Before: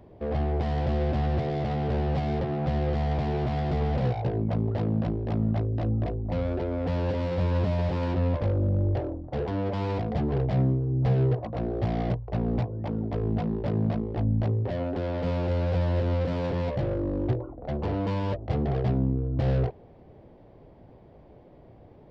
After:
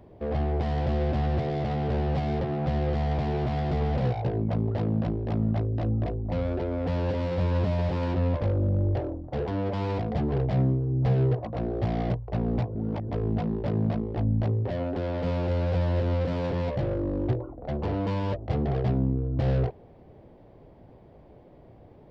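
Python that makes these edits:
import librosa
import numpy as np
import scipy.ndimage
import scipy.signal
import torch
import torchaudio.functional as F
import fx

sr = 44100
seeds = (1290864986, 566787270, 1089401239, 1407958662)

y = fx.edit(x, sr, fx.reverse_span(start_s=12.75, length_s=0.34), tone=tone)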